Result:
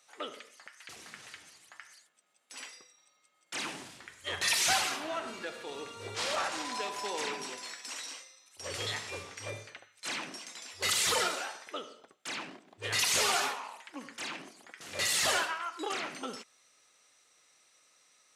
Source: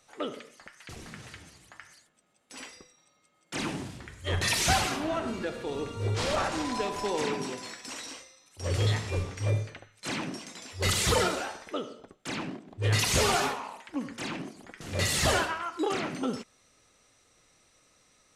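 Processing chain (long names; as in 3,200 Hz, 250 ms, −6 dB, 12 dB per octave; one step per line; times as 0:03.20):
high-pass filter 1,100 Hz 6 dB per octave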